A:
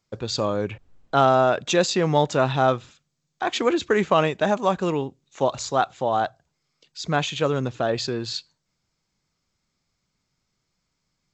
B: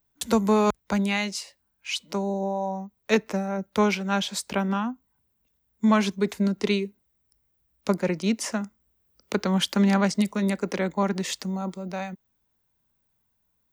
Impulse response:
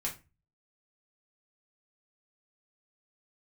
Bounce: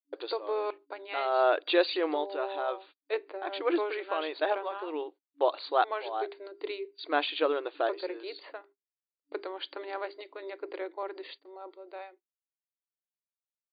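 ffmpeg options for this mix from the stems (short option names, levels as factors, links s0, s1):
-filter_complex "[0:a]agate=range=0.141:threshold=0.00794:ratio=16:detection=peak,volume=0.631[s0];[1:a]tiltshelf=f=640:g=3.5,bandreject=f=50:t=h:w=6,bandreject=f=100:t=h:w=6,bandreject=f=150:t=h:w=6,bandreject=f=200:t=h:w=6,bandreject=f=250:t=h:w=6,bandreject=f=300:t=h:w=6,bandreject=f=350:t=h:w=6,bandreject=f=400:t=h:w=6,volume=0.316,asplit=3[s1][s2][s3];[s2]volume=0.106[s4];[s3]apad=whole_len=499770[s5];[s0][s5]sidechaincompress=threshold=0.00891:ratio=12:attack=7.4:release=243[s6];[2:a]atrim=start_sample=2205[s7];[s4][s7]afir=irnorm=-1:irlink=0[s8];[s6][s1][s8]amix=inputs=3:normalize=0,agate=range=0.0398:threshold=0.00562:ratio=16:detection=peak,afftfilt=real='re*between(b*sr/4096,290,4700)':imag='im*between(b*sr/4096,290,4700)':win_size=4096:overlap=0.75"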